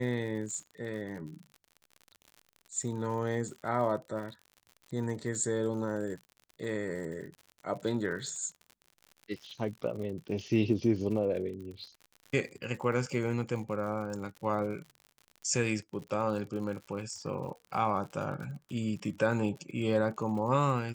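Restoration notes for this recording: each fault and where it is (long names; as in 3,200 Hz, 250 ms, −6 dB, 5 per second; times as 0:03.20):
surface crackle 70 per second −41 dBFS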